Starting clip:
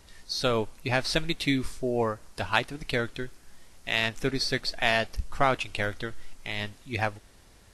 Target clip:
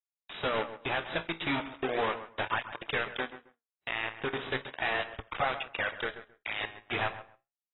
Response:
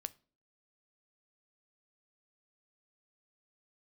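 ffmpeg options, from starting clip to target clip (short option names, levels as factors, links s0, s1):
-filter_complex "[0:a]highpass=f=77:p=1,equalizer=f=7100:t=o:w=0.39:g=12,bandreject=f=60:t=h:w=6,bandreject=f=120:t=h:w=6,bandreject=f=180:t=h:w=6,bandreject=f=240:t=h:w=6,bandreject=f=300:t=h:w=6,acrossover=split=2700[s0][s1];[s1]alimiter=level_in=1.26:limit=0.0631:level=0:latency=1:release=195,volume=0.794[s2];[s0][s2]amix=inputs=2:normalize=0,acompressor=threshold=0.0158:ratio=3,acrusher=bits=5:mix=0:aa=0.000001,asplit=2[s3][s4];[s4]highpass=f=720:p=1,volume=7.08,asoftclip=type=tanh:threshold=0.1[s5];[s3][s5]amix=inputs=2:normalize=0,lowpass=f=3100:p=1,volume=0.501,flanger=delay=8.6:depth=9.6:regen=64:speed=0.37:shape=sinusoidal,asplit=2[s6][s7];[s7]adelay=134,lowpass=f=2000:p=1,volume=0.251,asplit=2[s8][s9];[s9]adelay=134,lowpass=f=2000:p=1,volume=0.19[s10];[s6][s8][s10]amix=inputs=3:normalize=0,volume=1.68" -ar 22050 -c:a aac -b:a 16k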